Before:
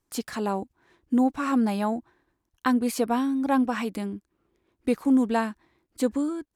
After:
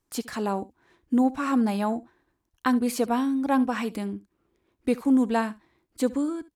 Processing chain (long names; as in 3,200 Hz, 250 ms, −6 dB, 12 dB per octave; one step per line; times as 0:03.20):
single-tap delay 70 ms −19.5 dB